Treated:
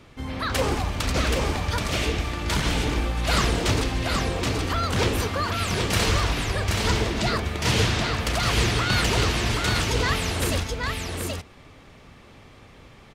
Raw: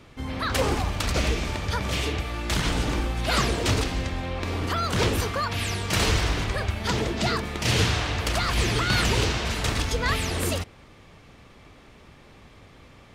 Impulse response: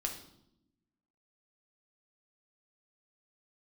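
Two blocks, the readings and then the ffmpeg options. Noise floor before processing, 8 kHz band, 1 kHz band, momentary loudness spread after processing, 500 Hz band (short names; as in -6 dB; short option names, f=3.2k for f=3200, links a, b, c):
-51 dBFS, +1.5 dB, +1.5 dB, 5 LU, +1.5 dB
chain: -af "aecho=1:1:777:0.668"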